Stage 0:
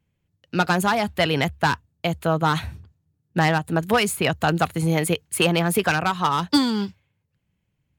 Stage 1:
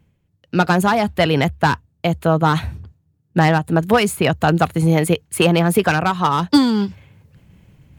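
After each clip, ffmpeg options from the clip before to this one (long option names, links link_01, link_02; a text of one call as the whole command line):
ffmpeg -i in.wav -af "tiltshelf=frequency=1200:gain=3,areverse,acompressor=mode=upward:threshold=-35dB:ratio=2.5,areverse,volume=3.5dB" out.wav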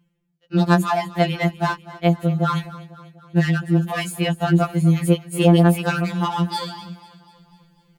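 ffmpeg -i in.wav -af "aecho=1:1:247|494|741|988|1235:0.126|0.0705|0.0395|0.0221|0.0124,afftfilt=real='re*2.83*eq(mod(b,8),0)':imag='im*2.83*eq(mod(b,8),0)':win_size=2048:overlap=0.75,volume=-3.5dB" out.wav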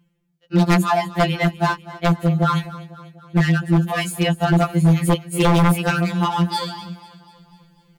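ffmpeg -i in.wav -af "aeval=exprs='0.282*(abs(mod(val(0)/0.282+3,4)-2)-1)':channel_layout=same,volume=2.5dB" out.wav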